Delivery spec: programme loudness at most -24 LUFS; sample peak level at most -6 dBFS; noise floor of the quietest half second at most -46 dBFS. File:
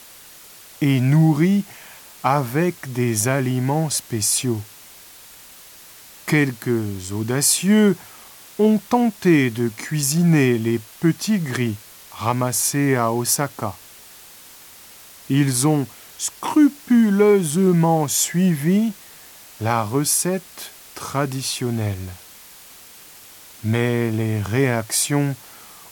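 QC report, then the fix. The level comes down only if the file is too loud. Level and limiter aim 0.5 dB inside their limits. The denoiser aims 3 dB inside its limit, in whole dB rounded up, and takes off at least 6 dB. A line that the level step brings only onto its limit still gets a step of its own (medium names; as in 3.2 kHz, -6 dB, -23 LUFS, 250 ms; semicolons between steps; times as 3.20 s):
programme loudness -19.5 LUFS: fail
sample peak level -4.5 dBFS: fail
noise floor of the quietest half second -44 dBFS: fail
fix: trim -5 dB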